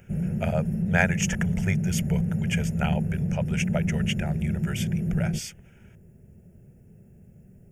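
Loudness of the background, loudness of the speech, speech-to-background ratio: −27.5 LKFS, −31.5 LKFS, −4.0 dB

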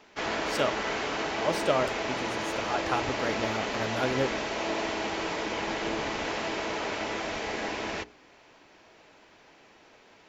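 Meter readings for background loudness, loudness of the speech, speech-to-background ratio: −31.0 LKFS, −32.5 LKFS, −1.5 dB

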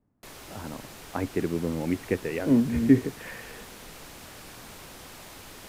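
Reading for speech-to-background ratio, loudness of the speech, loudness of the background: 18.0 dB, −26.0 LKFS, −44.0 LKFS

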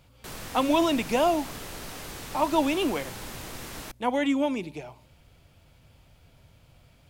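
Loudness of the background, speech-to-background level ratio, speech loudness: −39.0 LKFS, 12.5 dB, −26.5 LKFS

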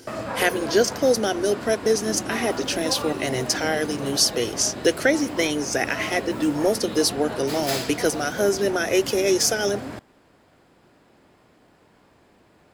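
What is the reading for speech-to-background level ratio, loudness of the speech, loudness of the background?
9.0 dB, −23.0 LKFS, −32.0 LKFS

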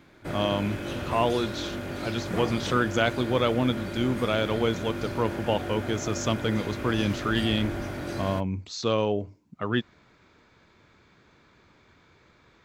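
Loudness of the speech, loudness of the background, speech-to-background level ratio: −28.0 LKFS, −34.0 LKFS, 6.0 dB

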